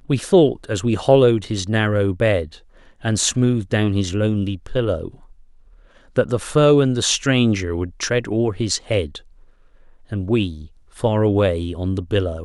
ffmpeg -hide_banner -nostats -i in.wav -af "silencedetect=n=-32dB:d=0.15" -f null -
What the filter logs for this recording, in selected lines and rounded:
silence_start: 2.57
silence_end: 3.04 | silence_duration: 0.47
silence_start: 5.08
silence_end: 6.16 | silence_duration: 1.08
silence_start: 9.18
silence_end: 10.12 | silence_duration: 0.94
silence_start: 10.66
silence_end: 10.97 | silence_duration: 0.31